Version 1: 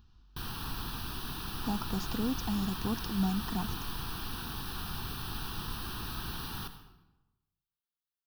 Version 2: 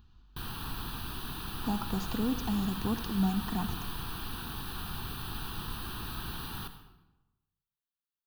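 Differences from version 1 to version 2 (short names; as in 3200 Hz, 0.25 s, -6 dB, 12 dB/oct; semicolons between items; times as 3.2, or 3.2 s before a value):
speech: send on; master: add bell 5400 Hz -10.5 dB 0.24 oct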